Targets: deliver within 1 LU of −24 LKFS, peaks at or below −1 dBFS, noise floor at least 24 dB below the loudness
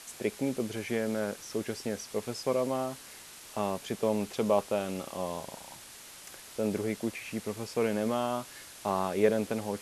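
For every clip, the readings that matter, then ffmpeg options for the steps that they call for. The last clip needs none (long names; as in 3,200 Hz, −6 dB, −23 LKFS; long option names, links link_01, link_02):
background noise floor −49 dBFS; target noise floor −57 dBFS; integrated loudness −32.5 LKFS; sample peak −11.0 dBFS; target loudness −24.0 LKFS
→ -af "afftdn=noise_reduction=8:noise_floor=-49"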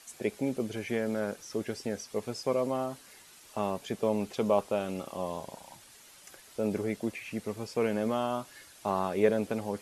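background noise floor −55 dBFS; target noise floor −57 dBFS
→ -af "afftdn=noise_reduction=6:noise_floor=-55"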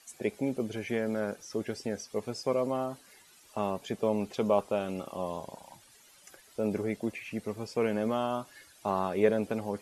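background noise floor −59 dBFS; integrated loudness −32.5 LKFS; sample peak −11.5 dBFS; target loudness −24.0 LKFS
→ -af "volume=8.5dB"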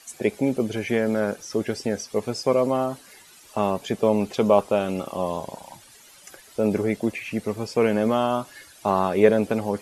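integrated loudness −24.0 LKFS; sample peak −3.0 dBFS; background noise floor −50 dBFS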